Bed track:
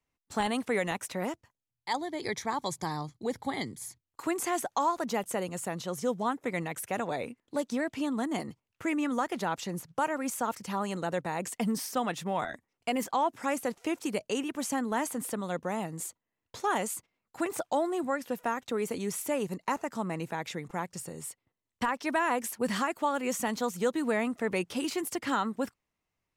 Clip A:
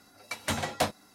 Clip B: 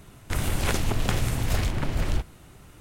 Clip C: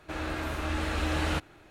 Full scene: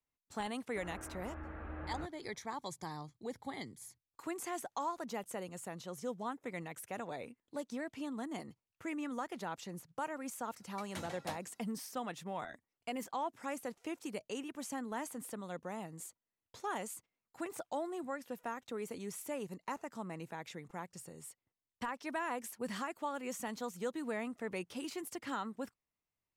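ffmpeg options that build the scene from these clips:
-filter_complex "[0:a]volume=-10dB[a];[3:a]lowpass=f=1.8k:w=0.5412,lowpass=f=1.8k:w=1.3066,atrim=end=1.7,asetpts=PTS-STARTPTS,volume=-15dB,afade=t=in:d=0.004:c=hsin,afade=t=out:st=1.696:d=0.004:c=hsin,adelay=670[b];[1:a]atrim=end=1.14,asetpts=PTS-STARTPTS,volume=-15.5dB,afade=t=in:d=0.004:c=hsin,afade=t=out:st=1.136:d=0.004:c=hsin,adelay=10470[c];[a][b][c]amix=inputs=3:normalize=0"

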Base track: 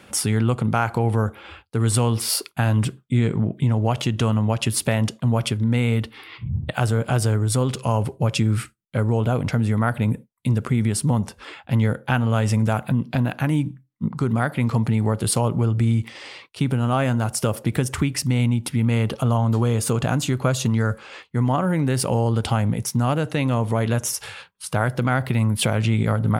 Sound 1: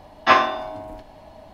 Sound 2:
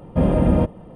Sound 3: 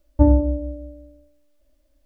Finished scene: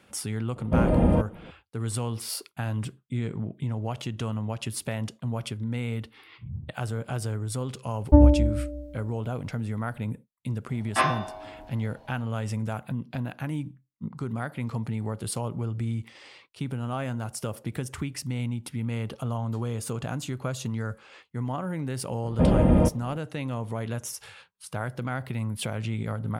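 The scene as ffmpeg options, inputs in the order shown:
-filter_complex "[2:a]asplit=2[a][b];[0:a]volume=-10.5dB[c];[a]atrim=end=0.95,asetpts=PTS-STARTPTS,volume=-4dB,afade=t=in:d=0.004:c=hsin,afade=t=out:st=0.946:d=0.004:c=hsin,adelay=560[d];[3:a]atrim=end=2.05,asetpts=PTS-STARTPTS,volume=-0.5dB,afade=t=in:d=0.004:c=hsin,afade=t=out:st=2.046:d=0.004:c=hsin,adelay=7930[e];[1:a]atrim=end=1.53,asetpts=PTS-STARTPTS,volume=-8.5dB,afade=t=in:d=0.004:c=hsin,afade=t=out:st=1.526:d=0.004:c=hsin,adelay=10690[f];[b]atrim=end=0.95,asetpts=PTS-STARTPTS,volume=-2.5dB,afade=t=in:d=0.004:c=hsin,afade=t=out:st=0.946:d=0.004:c=hsin,adelay=22230[g];[c][d][e][f][g]amix=inputs=5:normalize=0"

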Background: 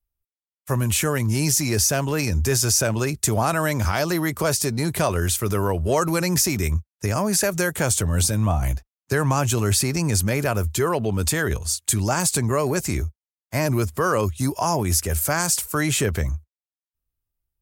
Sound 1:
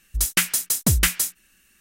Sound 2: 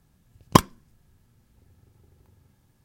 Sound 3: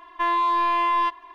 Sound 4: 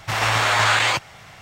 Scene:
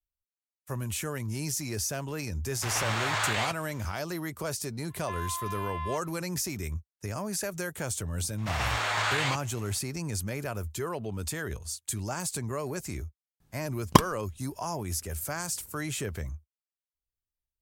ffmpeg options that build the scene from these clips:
-filter_complex "[4:a]asplit=2[a][b];[0:a]volume=-12dB[c];[3:a]highpass=920[d];[a]atrim=end=1.41,asetpts=PTS-STARTPTS,volume=-11.5dB,afade=t=in:d=0.004:c=hsin,afade=t=out:st=1.406:d=0.004:c=hsin,adelay=2540[e];[d]atrim=end=1.34,asetpts=PTS-STARTPTS,volume=-13.5dB,afade=t=in:d=0.004:c=hsin,afade=t=out:st=1.336:d=0.004:c=hsin,adelay=4880[f];[b]atrim=end=1.41,asetpts=PTS-STARTPTS,volume=-10.5dB,afade=t=in:d=0.004:c=hsin,afade=t=out:st=1.406:d=0.004:c=hsin,adelay=8380[g];[2:a]atrim=end=2.84,asetpts=PTS-STARTPTS,volume=-3dB,afade=t=in:d=0.004:c=hsin,afade=t=out:st=2.836:d=0.004:c=hsin,adelay=13400[h];[c][e][f][g][h]amix=inputs=5:normalize=0"

